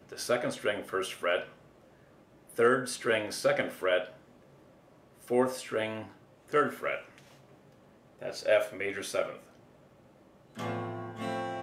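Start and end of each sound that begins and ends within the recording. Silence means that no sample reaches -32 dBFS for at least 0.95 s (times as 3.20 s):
2.59–4.03 s
5.31–6.98 s
8.22–9.30 s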